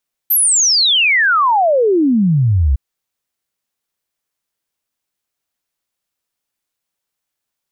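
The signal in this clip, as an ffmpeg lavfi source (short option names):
-f lavfi -i "aevalsrc='0.335*clip(min(t,2.46-t)/0.01,0,1)*sin(2*PI*13000*2.46/log(62/13000)*(exp(log(62/13000)*t/2.46)-1))':d=2.46:s=44100"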